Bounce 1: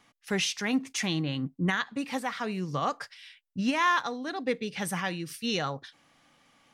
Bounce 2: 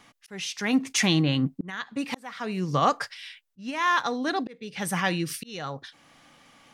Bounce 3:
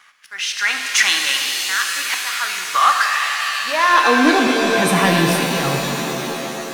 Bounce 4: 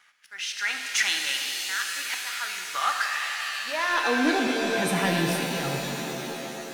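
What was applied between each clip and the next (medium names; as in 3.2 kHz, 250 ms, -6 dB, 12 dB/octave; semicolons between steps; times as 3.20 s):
slow attack 689 ms; trim +7.5 dB
high-pass sweep 1.4 kHz -> 97 Hz, 3.28–4.75 s; waveshaping leveller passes 1; pitch-shifted reverb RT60 3.9 s, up +7 st, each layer -2 dB, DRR 2.5 dB; trim +4.5 dB
band-stop 1.1 kHz, Q 6; trim -9 dB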